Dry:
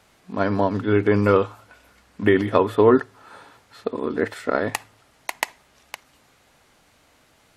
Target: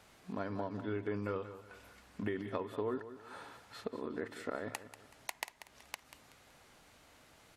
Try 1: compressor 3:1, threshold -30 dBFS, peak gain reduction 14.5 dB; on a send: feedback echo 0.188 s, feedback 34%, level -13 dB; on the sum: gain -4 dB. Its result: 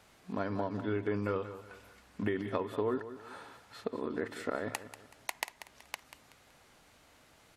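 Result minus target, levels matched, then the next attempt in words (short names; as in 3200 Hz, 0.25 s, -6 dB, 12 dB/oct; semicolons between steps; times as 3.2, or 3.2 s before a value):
compressor: peak gain reduction -4.5 dB
compressor 3:1, threshold -36.5 dBFS, peak gain reduction 19 dB; on a send: feedback echo 0.188 s, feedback 34%, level -13 dB; on the sum: gain -4 dB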